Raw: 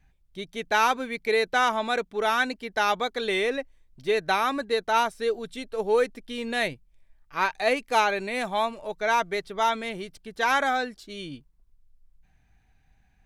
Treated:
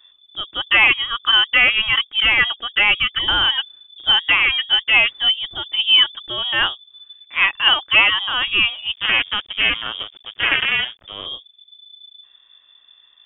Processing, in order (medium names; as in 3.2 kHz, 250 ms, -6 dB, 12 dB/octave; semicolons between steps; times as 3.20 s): 8.93–11.26 s: cycle switcher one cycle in 2, muted; frequency inversion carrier 3.5 kHz; trim +8.5 dB